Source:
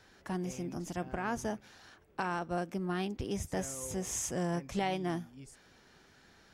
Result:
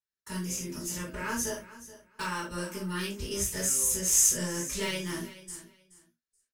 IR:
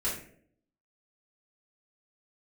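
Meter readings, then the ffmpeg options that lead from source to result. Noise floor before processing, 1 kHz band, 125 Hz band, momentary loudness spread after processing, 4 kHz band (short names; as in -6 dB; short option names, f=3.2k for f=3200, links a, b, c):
-63 dBFS, -2.5 dB, 0.0 dB, 19 LU, +9.5 dB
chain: -filter_complex "[0:a]aeval=exprs='0.1*(cos(1*acos(clip(val(0)/0.1,-1,1)))-cos(1*PI/2))+0.002*(cos(4*acos(clip(val(0)/0.1,-1,1)))-cos(4*PI/2))':c=same,asoftclip=type=hard:threshold=-25dB,crystalizer=i=8:c=0,agate=range=-44dB:threshold=-40dB:ratio=16:detection=peak,asuperstop=centerf=740:order=8:qfactor=4.6,aecho=1:1:427|854:0.15|0.0299[a];[1:a]atrim=start_sample=2205,atrim=end_sample=3969[b];[a][b]afir=irnorm=-1:irlink=0,volume=-8dB"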